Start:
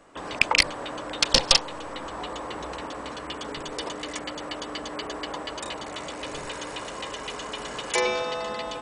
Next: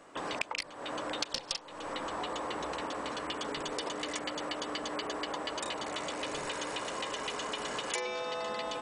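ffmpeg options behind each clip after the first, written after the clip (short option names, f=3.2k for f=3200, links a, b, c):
-af "lowshelf=f=99:g=-11.5,acompressor=threshold=-32dB:ratio=10"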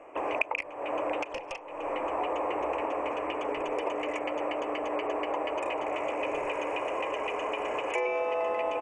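-af "firequalizer=gain_entry='entry(100,0);entry(190,-11);entry(310,5);entry(620,10);entry(1100,4);entry(1500,-5);entry(2500,9);entry(3800,-28);entry(6200,-12);entry(12000,-16)':delay=0.05:min_phase=1"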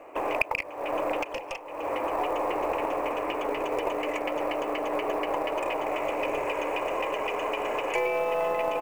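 -af "aeval=exprs='0.335*(cos(1*acos(clip(val(0)/0.335,-1,1)))-cos(1*PI/2))+0.0133*(cos(6*acos(clip(val(0)/0.335,-1,1)))-cos(6*PI/2))':c=same,acrusher=bits=7:mode=log:mix=0:aa=0.000001,volume=2.5dB"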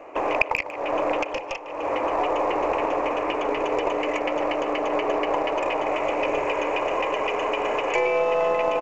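-filter_complex "[0:a]aresample=16000,aresample=44100,asplit=2[a][b];[b]adelay=150,highpass=300,lowpass=3.4k,asoftclip=type=hard:threshold=-17.5dB,volume=-13dB[c];[a][c]amix=inputs=2:normalize=0,volume=4.5dB"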